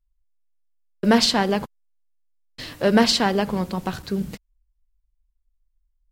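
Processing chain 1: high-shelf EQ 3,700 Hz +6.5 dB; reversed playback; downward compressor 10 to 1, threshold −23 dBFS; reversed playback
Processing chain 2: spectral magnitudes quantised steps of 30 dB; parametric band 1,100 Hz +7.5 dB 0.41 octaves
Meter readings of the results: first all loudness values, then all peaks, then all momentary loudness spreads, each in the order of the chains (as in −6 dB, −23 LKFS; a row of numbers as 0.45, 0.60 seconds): −28.5, −21.0 LKFS; −13.5, −2.5 dBFS; 12, 18 LU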